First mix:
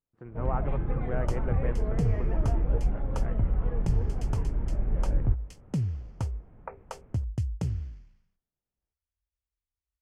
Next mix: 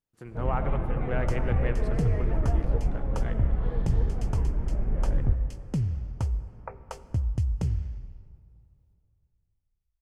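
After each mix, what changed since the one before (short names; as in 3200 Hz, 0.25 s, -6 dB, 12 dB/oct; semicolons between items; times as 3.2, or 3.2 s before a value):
speech: remove LPF 1400 Hz 12 dB/oct; second sound: remove HPF 75 Hz; reverb: on, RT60 2.7 s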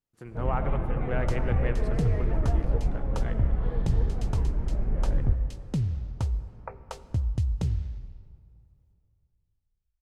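second sound: add bell 3800 Hz +13.5 dB 0.26 oct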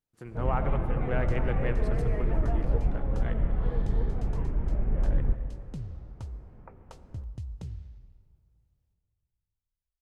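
second sound -11.5 dB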